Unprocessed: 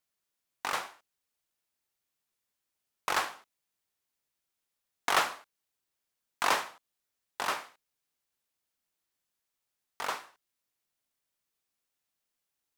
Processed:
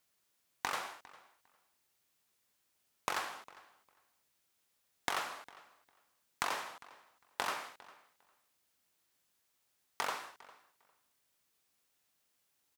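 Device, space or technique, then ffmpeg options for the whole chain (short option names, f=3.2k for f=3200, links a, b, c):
serial compression, leveller first: -filter_complex "[0:a]acompressor=threshold=-36dB:ratio=1.5,acompressor=threshold=-40dB:ratio=6,highpass=45,asplit=2[a][b];[b]adelay=403,lowpass=f=4k:p=1,volume=-20dB,asplit=2[c][d];[d]adelay=403,lowpass=f=4k:p=1,volume=0.17[e];[a][c][e]amix=inputs=3:normalize=0,volume=7dB"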